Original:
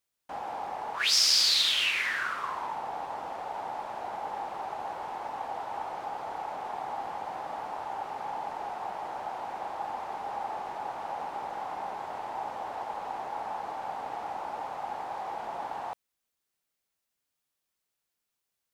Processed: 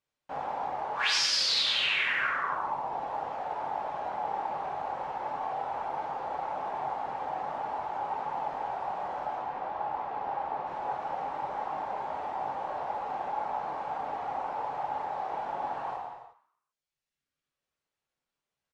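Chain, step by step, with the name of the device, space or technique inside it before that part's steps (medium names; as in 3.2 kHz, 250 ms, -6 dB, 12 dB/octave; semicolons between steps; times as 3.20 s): through cloth (low-pass 8 kHz 12 dB/octave; treble shelf 3.6 kHz -11 dB); reverb removal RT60 1.4 s; 9.35–10.66 s: distance through air 120 m; frequency-shifting echo 132 ms, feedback 38%, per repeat +100 Hz, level -20 dB; gated-style reverb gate 420 ms falling, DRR -4.5 dB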